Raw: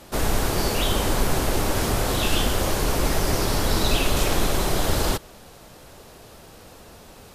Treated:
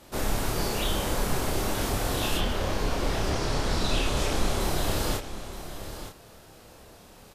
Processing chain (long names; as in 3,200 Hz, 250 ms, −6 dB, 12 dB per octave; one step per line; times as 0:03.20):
0:02.37–0:04.59: low-pass filter 4,300 Hz → 11,000 Hz 12 dB per octave
double-tracking delay 29 ms −2.5 dB
single-tap delay 921 ms −11.5 dB
level −7 dB